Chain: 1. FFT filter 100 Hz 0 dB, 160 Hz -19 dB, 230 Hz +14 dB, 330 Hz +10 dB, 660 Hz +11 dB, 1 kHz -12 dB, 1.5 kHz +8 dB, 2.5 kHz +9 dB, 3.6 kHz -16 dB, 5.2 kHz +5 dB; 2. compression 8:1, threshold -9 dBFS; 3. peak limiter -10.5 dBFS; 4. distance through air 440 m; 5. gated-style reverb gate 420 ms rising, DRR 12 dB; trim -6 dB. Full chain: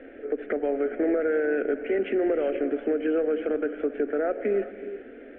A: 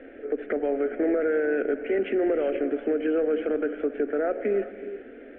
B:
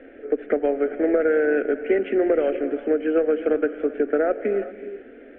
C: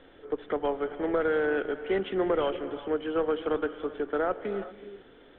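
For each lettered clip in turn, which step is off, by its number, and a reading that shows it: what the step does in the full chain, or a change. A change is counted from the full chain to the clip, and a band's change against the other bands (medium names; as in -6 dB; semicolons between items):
2, mean gain reduction 2.0 dB; 3, mean gain reduction 2.0 dB; 1, crest factor change +2.0 dB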